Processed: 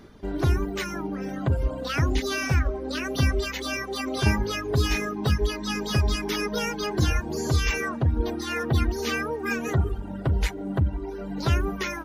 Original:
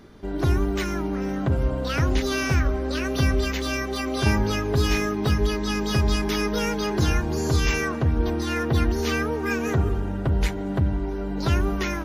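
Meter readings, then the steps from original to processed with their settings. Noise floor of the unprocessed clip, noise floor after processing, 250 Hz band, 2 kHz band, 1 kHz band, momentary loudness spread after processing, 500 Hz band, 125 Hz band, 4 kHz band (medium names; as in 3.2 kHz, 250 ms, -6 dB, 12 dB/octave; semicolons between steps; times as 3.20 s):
-29 dBFS, -35 dBFS, -4.0 dB, -1.0 dB, -2.0 dB, 5 LU, -3.0 dB, -1.5 dB, -1.0 dB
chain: reverb removal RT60 1.4 s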